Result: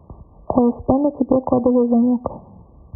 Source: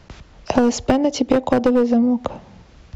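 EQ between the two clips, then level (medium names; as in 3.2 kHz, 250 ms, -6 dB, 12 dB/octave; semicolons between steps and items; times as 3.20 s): high-pass 53 Hz; brick-wall FIR low-pass 1.2 kHz; bass shelf 110 Hz +4.5 dB; 0.0 dB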